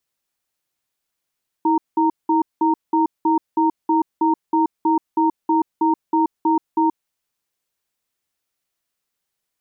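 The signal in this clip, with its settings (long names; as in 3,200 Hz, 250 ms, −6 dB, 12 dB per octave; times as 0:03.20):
tone pair in a cadence 322 Hz, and 926 Hz, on 0.13 s, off 0.19 s, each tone −16.5 dBFS 5.35 s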